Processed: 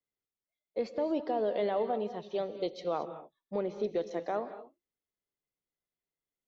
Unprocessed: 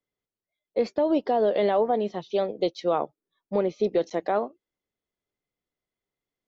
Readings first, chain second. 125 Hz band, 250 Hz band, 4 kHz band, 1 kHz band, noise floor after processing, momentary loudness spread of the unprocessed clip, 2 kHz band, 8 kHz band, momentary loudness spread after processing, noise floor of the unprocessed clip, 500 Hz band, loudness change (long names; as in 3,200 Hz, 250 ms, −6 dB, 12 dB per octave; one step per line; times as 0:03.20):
−8.0 dB, −8.5 dB, −8.0 dB, −8.5 dB, below −85 dBFS, 6 LU, −8.0 dB, can't be measured, 10 LU, below −85 dBFS, −8.0 dB, −8.5 dB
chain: reverb whose tail is shaped and stops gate 250 ms rising, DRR 10.5 dB
level −8.5 dB